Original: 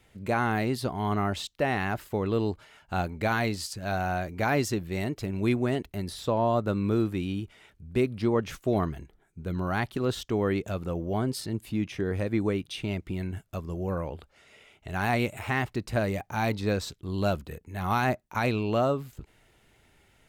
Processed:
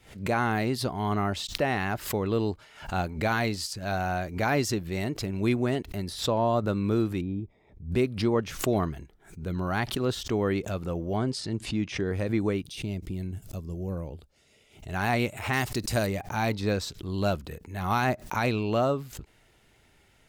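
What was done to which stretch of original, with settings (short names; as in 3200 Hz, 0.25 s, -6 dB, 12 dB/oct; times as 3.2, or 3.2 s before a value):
7.21–7.92 running mean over 30 samples
11.16–12.08 LPF 8500 Hz 24 dB/oct
12.62–14.89 bell 1400 Hz -12.5 dB 2.6 oct
15.53–16.07 tone controls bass 0 dB, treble +13 dB
whole clip: bell 5100 Hz +3 dB 0.77 oct; backwards sustainer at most 130 dB/s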